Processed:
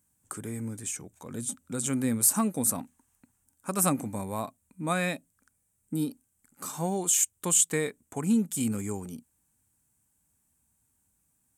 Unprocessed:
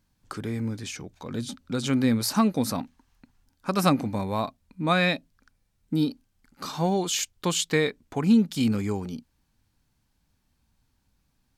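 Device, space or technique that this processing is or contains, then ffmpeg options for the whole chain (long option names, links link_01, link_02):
budget condenser microphone: -af "highpass=69,highshelf=frequency=6200:width_type=q:width=3:gain=11.5,volume=-5.5dB"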